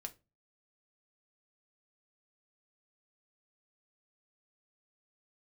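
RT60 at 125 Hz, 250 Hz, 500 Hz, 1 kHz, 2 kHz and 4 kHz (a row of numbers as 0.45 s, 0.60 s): 0.50 s, 0.40 s, 0.30 s, 0.25 s, 0.20 s, 0.20 s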